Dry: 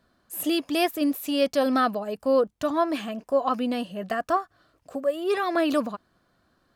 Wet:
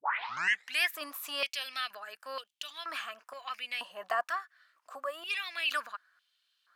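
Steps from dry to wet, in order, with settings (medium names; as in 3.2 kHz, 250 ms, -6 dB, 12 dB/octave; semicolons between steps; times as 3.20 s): tape start-up on the opening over 0.82 s; step-sequenced high-pass 2.1 Hz 960–3000 Hz; trim -4.5 dB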